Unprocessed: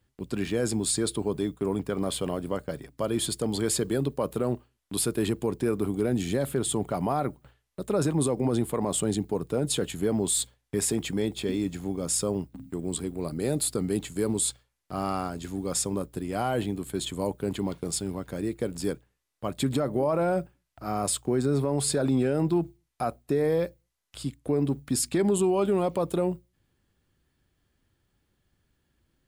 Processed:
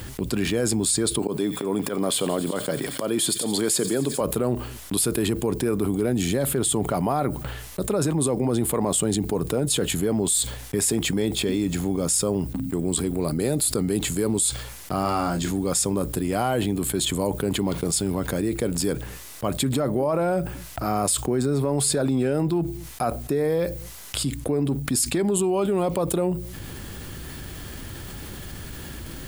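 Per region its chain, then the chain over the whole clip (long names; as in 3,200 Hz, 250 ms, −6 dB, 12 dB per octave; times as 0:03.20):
0:01.19–0:04.21: volume swells 129 ms + high-pass filter 180 Hz + delay with a high-pass on its return 88 ms, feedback 76%, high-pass 2,300 Hz, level −16.5 dB
0:15.02–0:15.51: parametric band 11,000 Hz −10.5 dB 0.21 octaves + notch filter 430 Hz, Q 8.6 + double-tracking delay 29 ms −6 dB
whole clip: high-shelf EQ 8,000 Hz +6.5 dB; envelope flattener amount 70%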